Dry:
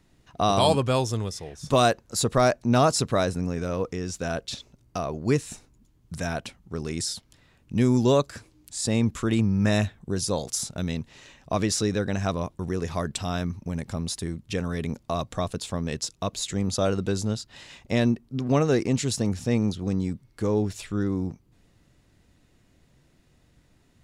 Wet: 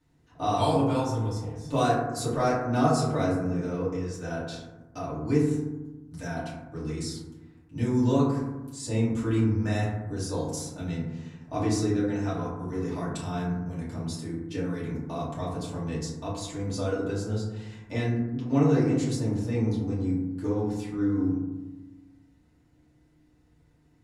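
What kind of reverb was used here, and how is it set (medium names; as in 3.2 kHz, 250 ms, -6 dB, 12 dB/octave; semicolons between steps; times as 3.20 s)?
FDN reverb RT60 1.1 s, low-frequency decay 1.45×, high-frequency decay 0.3×, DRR -10 dB; trim -15 dB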